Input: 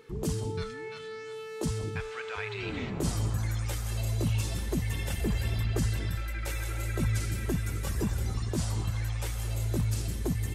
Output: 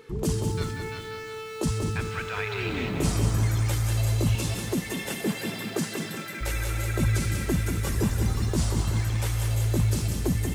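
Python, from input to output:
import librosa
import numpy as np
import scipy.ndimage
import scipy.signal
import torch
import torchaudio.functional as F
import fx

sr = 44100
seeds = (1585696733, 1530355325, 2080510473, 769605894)

y = fx.steep_highpass(x, sr, hz=160.0, slope=36, at=(4.35, 6.41))
y = fx.echo_crushed(y, sr, ms=189, feedback_pct=55, bits=9, wet_db=-6)
y = y * 10.0 ** (4.5 / 20.0)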